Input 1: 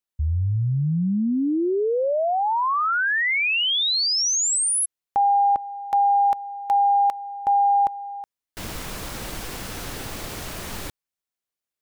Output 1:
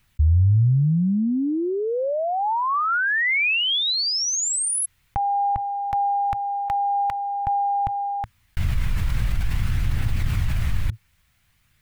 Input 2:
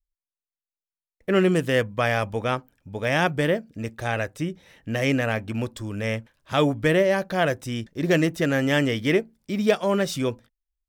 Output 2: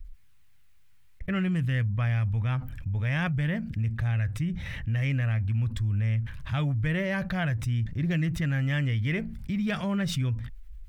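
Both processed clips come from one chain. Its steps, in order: EQ curve 110 Hz 0 dB, 420 Hz -28 dB, 2100 Hz -14 dB, 5600 Hz -25 dB; phaser 0.5 Hz, delay 2.3 ms, feedback 21%; fast leveller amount 70%; gain +4 dB

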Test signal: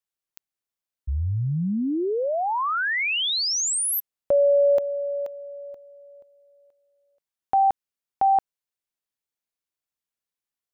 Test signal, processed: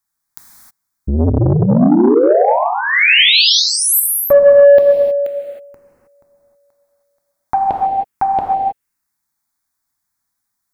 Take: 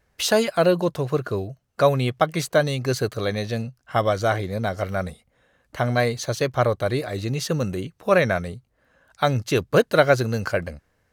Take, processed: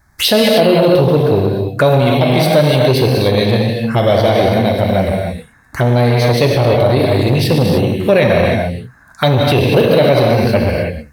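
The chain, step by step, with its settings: envelope phaser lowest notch 490 Hz, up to 1300 Hz, full sweep at -22.5 dBFS; non-linear reverb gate 0.34 s flat, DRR -0.5 dB; maximiser +14 dB; core saturation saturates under 320 Hz

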